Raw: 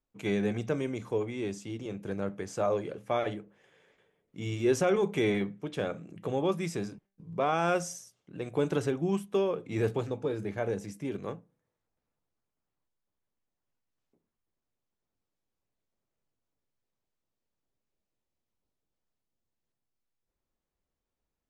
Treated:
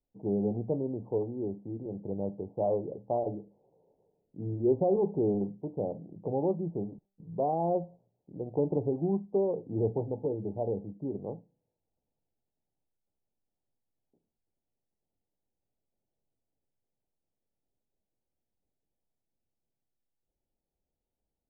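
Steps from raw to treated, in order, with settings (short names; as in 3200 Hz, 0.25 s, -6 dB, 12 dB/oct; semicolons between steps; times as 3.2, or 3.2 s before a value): steep low-pass 890 Hz 72 dB/oct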